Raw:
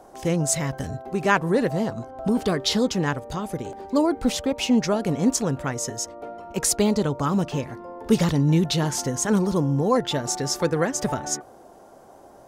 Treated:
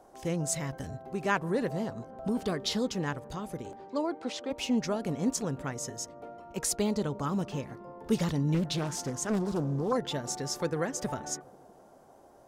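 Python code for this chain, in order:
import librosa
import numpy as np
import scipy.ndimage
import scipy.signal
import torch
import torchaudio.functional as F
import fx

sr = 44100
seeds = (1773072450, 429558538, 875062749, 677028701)

y = fx.bandpass_edges(x, sr, low_hz=330.0, high_hz=5500.0, at=(3.75, 4.49), fade=0.02)
y = fx.echo_wet_lowpass(y, sr, ms=162, feedback_pct=68, hz=850.0, wet_db=-21.0)
y = fx.doppler_dist(y, sr, depth_ms=0.59, at=(8.54, 9.93))
y = y * librosa.db_to_amplitude(-8.5)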